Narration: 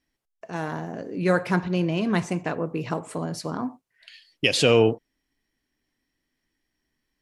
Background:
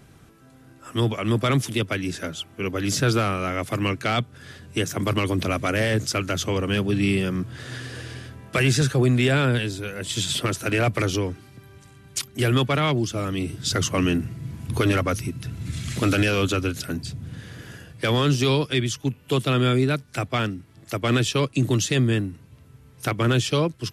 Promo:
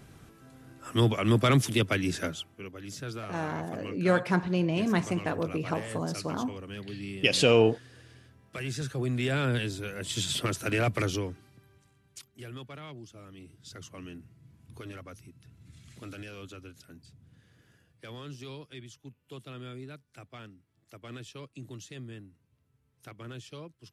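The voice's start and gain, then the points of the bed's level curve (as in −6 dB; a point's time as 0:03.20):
2.80 s, −3.0 dB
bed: 0:02.26 −1.5 dB
0:02.72 −17.5 dB
0:08.47 −17.5 dB
0:09.63 −5.5 dB
0:11.04 −5.5 dB
0:12.45 −22.5 dB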